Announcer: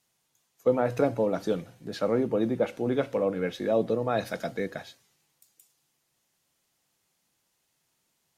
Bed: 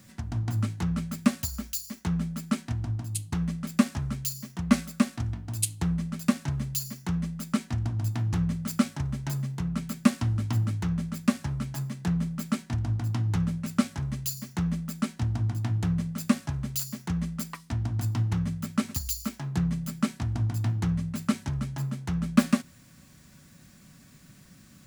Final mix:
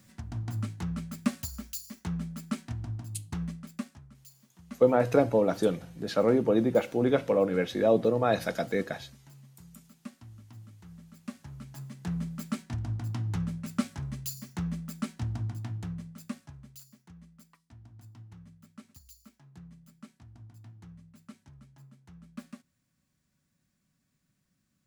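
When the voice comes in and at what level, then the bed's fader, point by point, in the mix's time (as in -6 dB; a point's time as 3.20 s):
4.15 s, +2.0 dB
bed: 3.46 s -5.5 dB
4.09 s -22.5 dB
10.81 s -22.5 dB
12.21 s -5 dB
15.35 s -5 dB
17.14 s -23 dB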